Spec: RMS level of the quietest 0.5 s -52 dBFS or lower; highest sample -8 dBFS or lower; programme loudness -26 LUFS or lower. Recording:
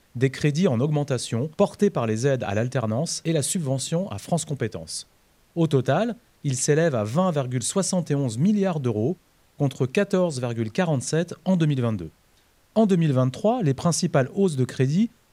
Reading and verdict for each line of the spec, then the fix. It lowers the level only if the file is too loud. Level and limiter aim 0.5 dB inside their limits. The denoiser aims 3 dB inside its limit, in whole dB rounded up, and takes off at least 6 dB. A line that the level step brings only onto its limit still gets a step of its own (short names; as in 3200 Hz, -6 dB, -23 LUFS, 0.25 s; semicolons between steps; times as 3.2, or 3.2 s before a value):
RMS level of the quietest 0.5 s -60 dBFS: OK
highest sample -6.5 dBFS: fail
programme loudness -24.0 LUFS: fail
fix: gain -2.5 dB